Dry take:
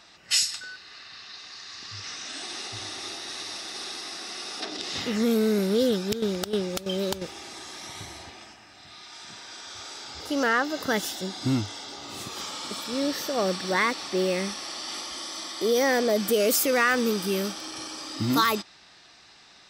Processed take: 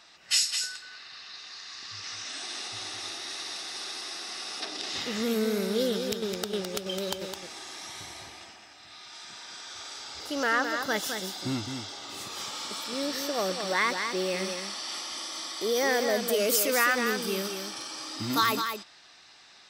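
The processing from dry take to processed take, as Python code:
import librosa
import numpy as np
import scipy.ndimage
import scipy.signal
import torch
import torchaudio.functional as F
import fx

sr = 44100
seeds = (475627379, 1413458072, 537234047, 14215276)

p1 = fx.low_shelf(x, sr, hz=390.0, db=-7.5)
p2 = p1 + fx.echo_single(p1, sr, ms=211, db=-6.5, dry=0)
y = F.gain(torch.from_numpy(p2), -1.5).numpy()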